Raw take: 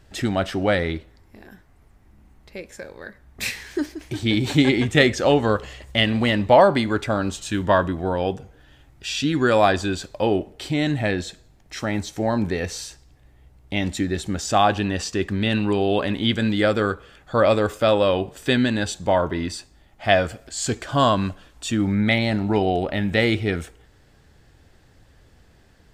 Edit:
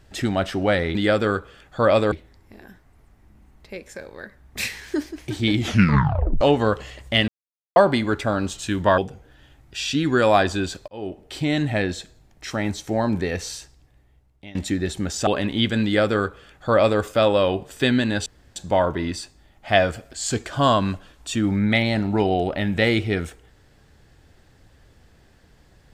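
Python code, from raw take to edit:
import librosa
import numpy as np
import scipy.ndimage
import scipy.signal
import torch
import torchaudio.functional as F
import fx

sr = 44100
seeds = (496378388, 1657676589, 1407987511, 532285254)

y = fx.edit(x, sr, fx.tape_stop(start_s=4.37, length_s=0.87),
    fx.silence(start_s=6.11, length_s=0.48),
    fx.cut(start_s=7.81, length_s=0.46),
    fx.fade_in_span(start_s=10.17, length_s=0.52),
    fx.fade_out_to(start_s=12.86, length_s=0.98, floor_db=-21.5),
    fx.cut(start_s=14.56, length_s=1.37),
    fx.duplicate(start_s=16.5, length_s=1.17, to_s=0.95),
    fx.insert_room_tone(at_s=18.92, length_s=0.3), tone=tone)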